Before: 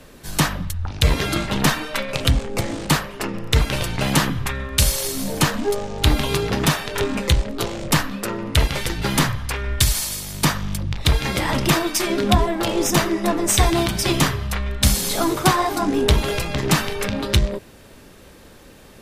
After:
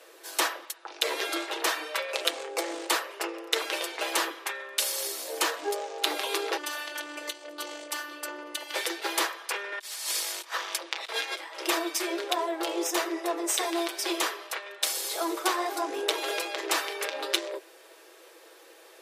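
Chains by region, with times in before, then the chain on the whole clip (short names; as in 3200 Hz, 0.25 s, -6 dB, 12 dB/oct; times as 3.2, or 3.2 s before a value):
6.57–8.74 notches 60/120/180/240/300/360/420/480/540/600 Hz + compressor 4:1, threshold -23 dBFS + robotiser 296 Hz
9.72–11.61 weighting filter A + negative-ratio compressor -30 dBFS, ratio -0.5
whole clip: steep high-pass 340 Hz 72 dB/oct; comb 6.1 ms, depth 42%; vocal rider within 3 dB 0.5 s; gain -6.5 dB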